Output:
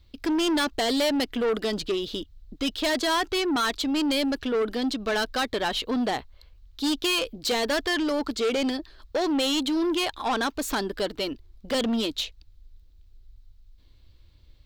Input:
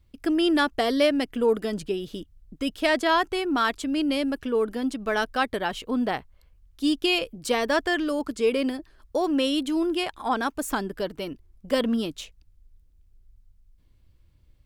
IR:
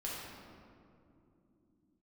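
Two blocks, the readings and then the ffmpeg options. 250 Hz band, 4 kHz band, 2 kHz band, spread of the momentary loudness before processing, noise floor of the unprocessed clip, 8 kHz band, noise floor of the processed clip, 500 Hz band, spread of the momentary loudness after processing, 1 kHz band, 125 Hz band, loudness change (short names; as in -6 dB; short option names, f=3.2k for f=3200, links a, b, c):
-1.0 dB, +3.5 dB, -1.0 dB, 10 LU, -60 dBFS, +5.0 dB, -56 dBFS, -1.5 dB, 7 LU, -2.0 dB, -1.0 dB, -0.5 dB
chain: -filter_complex "[0:a]equalizer=f=160:t=o:w=0.67:g=-9,equalizer=f=4k:t=o:w=0.67:g=11,equalizer=f=10k:t=o:w=0.67:g=-8,asplit=2[a][b];[b]alimiter=limit=-15.5dB:level=0:latency=1,volume=-2.5dB[c];[a][c]amix=inputs=2:normalize=0,asoftclip=type=tanh:threshold=-21dB"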